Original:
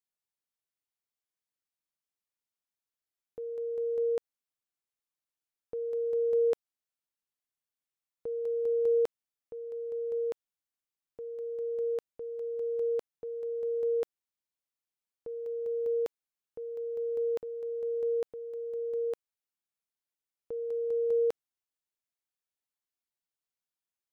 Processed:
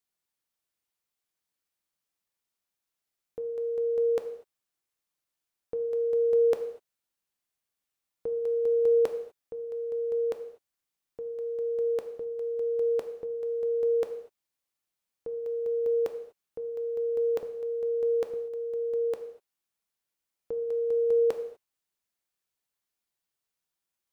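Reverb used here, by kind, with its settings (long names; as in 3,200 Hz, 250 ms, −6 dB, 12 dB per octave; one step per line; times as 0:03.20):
reverb whose tail is shaped and stops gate 270 ms falling, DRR 7 dB
level +5 dB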